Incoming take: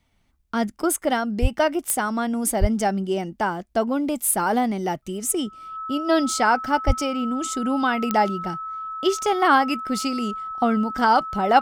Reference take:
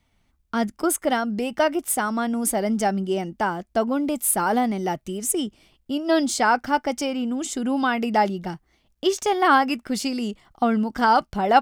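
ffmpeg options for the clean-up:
ffmpeg -i in.wav -filter_complex "[0:a]adeclick=threshold=4,bandreject=frequency=1300:width=30,asplit=3[link_01][link_02][link_03];[link_01]afade=type=out:start_time=1.41:duration=0.02[link_04];[link_02]highpass=frequency=140:width=0.5412,highpass=frequency=140:width=1.3066,afade=type=in:start_time=1.41:duration=0.02,afade=type=out:start_time=1.53:duration=0.02[link_05];[link_03]afade=type=in:start_time=1.53:duration=0.02[link_06];[link_04][link_05][link_06]amix=inputs=3:normalize=0,asplit=3[link_07][link_08][link_09];[link_07]afade=type=out:start_time=2.6:duration=0.02[link_10];[link_08]highpass=frequency=140:width=0.5412,highpass=frequency=140:width=1.3066,afade=type=in:start_time=2.6:duration=0.02,afade=type=out:start_time=2.72:duration=0.02[link_11];[link_09]afade=type=in:start_time=2.72:duration=0.02[link_12];[link_10][link_11][link_12]amix=inputs=3:normalize=0,asplit=3[link_13][link_14][link_15];[link_13]afade=type=out:start_time=6.86:duration=0.02[link_16];[link_14]highpass=frequency=140:width=0.5412,highpass=frequency=140:width=1.3066,afade=type=in:start_time=6.86:duration=0.02,afade=type=out:start_time=6.98:duration=0.02[link_17];[link_15]afade=type=in:start_time=6.98:duration=0.02[link_18];[link_16][link_17][link_18]amix=inputs=3:normalize=0" out.wav

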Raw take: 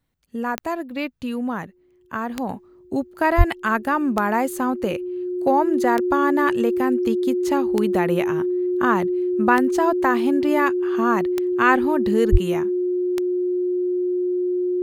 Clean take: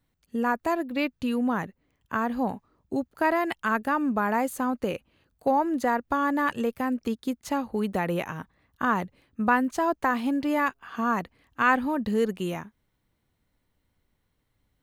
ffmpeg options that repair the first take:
ffmpeg -i in.wav -filter_complex "[0:a]adeclick=threshold=4,bandreject=frequency=360:width=30,asplit=3[link_01][link_02][link_03];[link_01]afade=type=out:start_time=3.37:duration=0.02[link_04];[link_02]highpass=frequency=140:width=0.5412,highpass=frequency=140:width=1.3066,afade=type=in:start_time=3.37:duration=0.02,afade=type=out:start_time=3.49:duration=0.02[link_05];[link_03]afade=type=in:start_time=3.49:duration=0.02[link_06];[link_04][link_05][link_06]amix=inputs=3:normalize=0,asplit=3[link_07][link_08][link_09];[link_07]afade=type=out:start_time=12.31:duration=0.02[link_10];[link_08]highpass=frequency=140:width=0.5412,highpass=frequency=140:width=1.3066,afade=type=in:start_time=12.31:duration=0.02,afade=type=out:start_time=12.43:duration=0.02[link_11];[link_09]afade=type=in:start_time=12.43:duration=0.02[link_12];[link_10][link_11][link_12]amix=inputs=3:normalize=0,asetnsamples=nb_out_samples=441:pad=0,asendcmd='2.49 volume volume -4.5dB',volume=0dB" out.wav

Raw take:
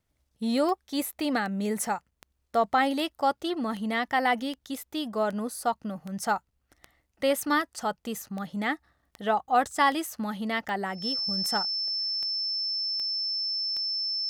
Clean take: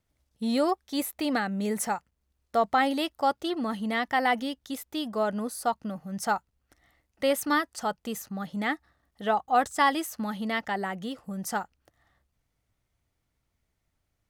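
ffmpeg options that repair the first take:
ffmpeg -i in.wav -af "adeclick=threshold=4,bandreject=frequency=5300:width=30" out.wav

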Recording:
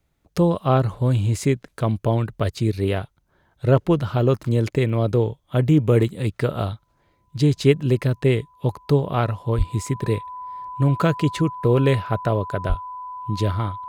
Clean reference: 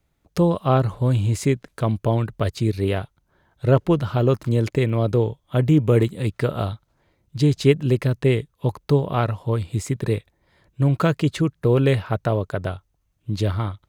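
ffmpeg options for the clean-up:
ffmpeg -i in.wav -filter_complex "[0:a]bandreject=frequency=1000:width=30,asplit=3[link_01][link_02][link_03];[link_01]afade=type=out:start_time=9.57:duration=0.02[link_04];[link_02]highpass=frequency=140:width=0.5412,highpass=frequency=140:width=1.3066,afade=type=in:start_time=9.57:duration=0.02,afade=type=out:start_time=9.69:duration=0.02[link_05];[link_03]afade=type=in:start_time=9.69:duration=0.02[link_06];[link_04][link_05][link_06]amix=inputs=3:normalize=0,asplit=3[link_07][link_08][link_09];[link_07]afade=type=out:start_time=12.68:duration=0.02[link_10];[link_08]highpass=frequency=140:width=0.5412,highpass=frequency=140:width=1.3066,afade=type=in:start_time=12.68:duration=0.02,afade=type=out:start_time=12.8:duration=0.02[link_11];[link_09]afade=type=in:start_time=12.8:duration=0.02[link_12];[link_10][link_11][link_12]amix=inputs=3:normalize=0" out.wav

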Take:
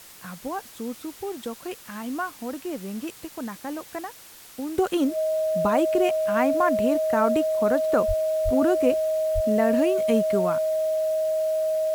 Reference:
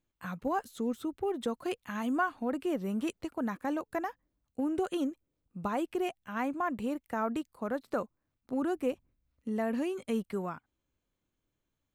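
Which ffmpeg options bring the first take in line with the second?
ffmpeg -i in.wav -filter_complex "[0:a]bandreject=frequency=630:width=30,asplit=3[link_01][link_02][link_03];[link_01]afade=type=out:start_time=8.07:duration=0.02[link_04];[link_02]highpass=frequency=140:width=0.5412,highpass=frequency=140:width=1.3066,afade=type=in:start_time=8.07:duration=0.02,afade=type=out:start_time=8.19:duration=0.02[link_05];[link_03]afade=type=in:start_time=8.19:duration=0.02[link_06];[link_04][link_05][link_06]amix=inputs=3:normalize=0,asplit=3[link_07][link_08][link_09];[link_07]afade=type=out:start_time=8.44:duration=0.02[link_10];[link_08]highpass=frequency=140:width=0.5412,highpass=frequency=140:width=1.3066,afade=type=in:start_time=8.44:duration=0.02,afade=type=out:start_time=8.56:duration=0.02[link_11];[link_09]afade=type=in:start_time=8.56:duration=0.02[link_12];[link_10][link_11][link_12]amix=inputs=3:normalize=0,asplit=3[link_13][link_14][link_15];[link_13]afade=type=out:start_time=9.34:duration=0.02[link_16];[link_14]highpass=frequency=140:width=0.5412,highpass=frequency=140:width=1.3066,afade=type=in:start_time=9.34:duration=0.02,afade=type=out:start_time=9.46:duration=0.02[link_17];[link_15]afade=type=in:start_time=9.46:duration=0.02[link_18];[link_16][link_17][link_18]amix=inputs=3:normalize=0,afwtdn=0.005,asetnsamples=nb_out_samples=441:pad=0,asendcmd='4.78 volume volume -9dB',volume=0dB" out.wav

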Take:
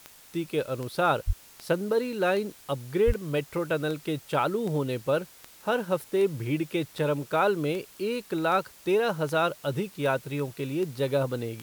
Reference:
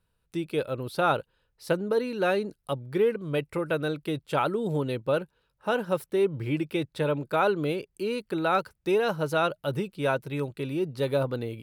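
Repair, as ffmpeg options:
ffmpeg -i in.wav -filter_complex "[0:a]adeclick=threshold=4,asplit=3[link_01][link_02][link_03];[link_01]afade=type=out:start_time=1.26:duration=0.02[link_04];[link_02]highpass=frequency=140:width=0.5412,highpass=frequency=140:width=1.3066,afade=type=in:start_time=1.26:duration=0.02,afade=type=out:start_time=1.38:duration=0.02[link_05];[link_03]afade=type=in:start_time=1.38:duration=0.02[link_06];[link_04][link_05][link_06]amix=inputs=3:normalize=0,asplit=3[link_07][link_08][link_09];[link_07]afade=type=out:start_time=3.06:duration=0.02[link_10];[link_08]highpass=frequency=140:width=0.5412,highpass=frequency=140:width=1.3066,afade=type=in:start_time=3.06:duration=0.02,afade=type=out:start_time=3.18:duration=0.02[link_11];[link_09]afade=type=in:start_time=3.18:duration=0.02[link_12];[link_10][link_11][link_12]amix=inputs=3:normalize=0,afftdn=noise_reduction=20:noise_floor=-52" out.wav

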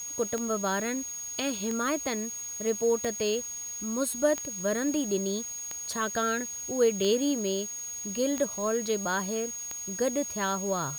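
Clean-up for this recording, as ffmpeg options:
ffmpeg -i in.wav -af "adeclick=threshold=4,bandreject=frequency=6600:width=30,afwtdn=0.0032" out.wav

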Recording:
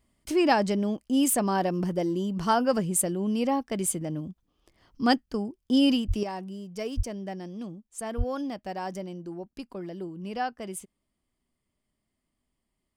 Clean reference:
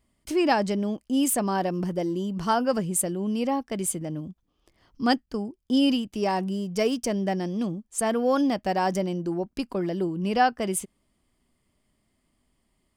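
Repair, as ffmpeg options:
ffmpeg -i in.wav -filter_complex "[0:a]asplit=3[link_01][link_02][link_03];[link_01]afade=type=out:start_time=6.07:duration=0.02[link_04];[link_02]highpass=frequency=140:width=0.5412,highpass=frequency=140:width=1.3066,afade=type=in:start_time=6.07:duration=0.02,afade=type=out:start_time=6.19:duration=0.02[link_05];[link_03]afade=type=in:start_time=6.19:duration=0.02[link_06];[link_04][link_05][link_06]amix=inputs=3:normalize=0,asplit=3[link_07][link_08][link_09];[link_07]afade=type=out:start_time=6.96:duration=0.02[link_10];[link_08]highpass=frequency=140:width=0.5412,highpass=frequency=140:width=1.3066,afade=type=in:start_time=6.96:duration=0.02,afade=type=out:start_time=7.08:duration=0.02[link_11];[link_09]afade=type=in:start_time=7.08:duration=0.02[link_12];[link_10][link_11][link_12]amix=inputs=3:normalize=0,asplit=3[link_13][link_14][link_15];[link_13]afade=type=out:start_time=8.17:duration=0.02[link_16];[link_14]highpass=frequency=140:width=0.5412,highpass=frequency=140:width=1.3066,afade=type=in:start_time=8.17:duration=0.02,afade=type=out:start_time=8.29:duration=0.02[link_17];[link_15]afade=type=in:start_time=8.29:duration=0.02[link_18];[link_16][link_17][link_18]amix=inputs=3:normalize=0,asetnsamples=nb_out_samples=441:pad=0,asendcmd='6.23 volume volume 9.5dB',volume=0dB" out.wav

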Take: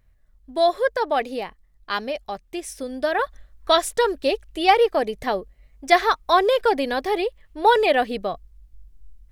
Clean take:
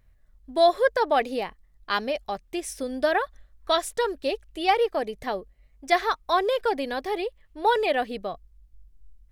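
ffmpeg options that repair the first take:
ffmpeg -i in.wav -af "asetnsamples=nb_out_samples=441:pad=0,asendcmd='3.19 volume volume -5.5dB',volume=0dB" out.wav

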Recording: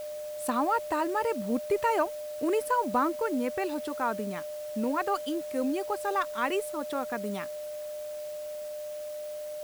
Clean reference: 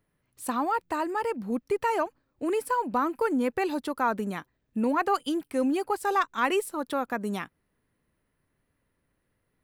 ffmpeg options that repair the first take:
ffmpeg -i in.wav -af "bandreject=frequency=600:width=30,afwtdn=0.0028,asetnsamples=nb_out_samples=441:pad=0,asendcmd='3.12 volume volume 4dB',volume=0dB" out.wav

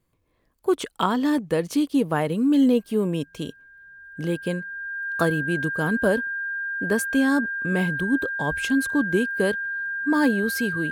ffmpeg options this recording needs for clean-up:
ffmpeg -i in.wav -af "bandreject=frequency=1600:width=30" out.wav

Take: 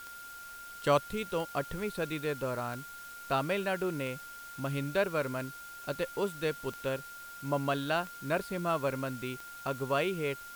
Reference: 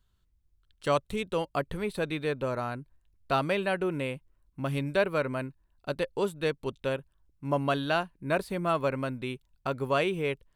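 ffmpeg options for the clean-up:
ffmpeg -i in.wav -af "adeclick=threshold=4,bandreject=frequency=1400:width=30,afwtdn=0.0025,asetnsamples=nb_out_samples=441:pad=0,asendcmd='1.07 volume volume 3.5dB',volume=0dB" out.wav

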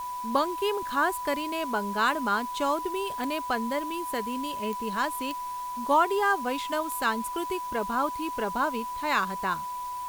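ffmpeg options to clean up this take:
ffmpeg -i in.wav -af "adeclick=threshold=4,bandreject=frequency=990:width=30,afwtdn=0.0035" out.wav

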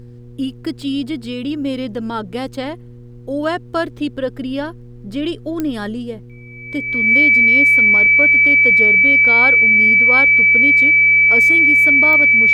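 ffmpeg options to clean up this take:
ffmpeg -i in.wav -af "adeclick=threshold=4,bandreject=frequency=120.6:width_type=h:width=4,bandreject=frequency=241.2:width_type=h:width=4,bandreject=frequency=361.8:width_type=h:width=4,bandreject=frequency=482.4:width_type=h:width=4,bandreject=frequency=2300:width=30,agate=range=-21dB:threshold=-29dB" out.wav

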